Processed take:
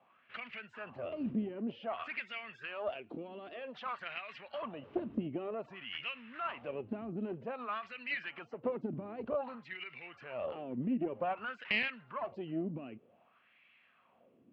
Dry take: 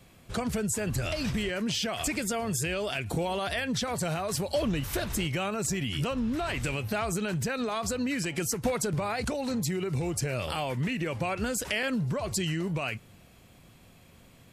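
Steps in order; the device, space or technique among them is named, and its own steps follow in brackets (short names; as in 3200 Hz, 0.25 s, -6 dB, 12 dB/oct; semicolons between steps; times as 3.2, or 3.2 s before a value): 2.91–4 tilt +3.5 dB/oct; wah-wah guitar rig (wah 0.53 Hz 270–2200 Hz, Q 3.6; tube stage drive 27 dB, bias 0.7; speaker cabinet 82–3600 Hz, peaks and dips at 230 Hz +7 dB, 630 Hz +3 dB, 1200 Hz +4 dB, 2800 Hz +9 dB); gain +3.5 dB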